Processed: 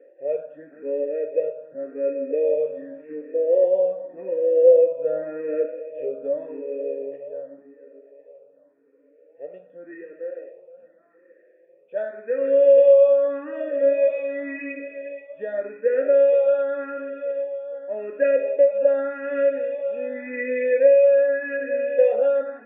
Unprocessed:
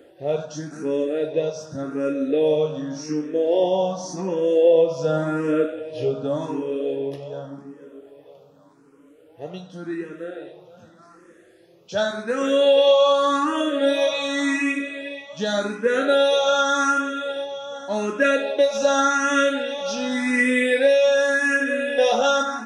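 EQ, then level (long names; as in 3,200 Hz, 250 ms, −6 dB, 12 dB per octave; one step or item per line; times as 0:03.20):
formant resonators in series e
high-frequency loss of the air 62 metres
loudspeaker in its box 210–3,300 Hz, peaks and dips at 270 Hz +8 dB, 430 Hz +6 dB, 620 Hz +7 dB, 1,500 Hz +8 dB, 2,700 Hz +6 dB
0.0 dB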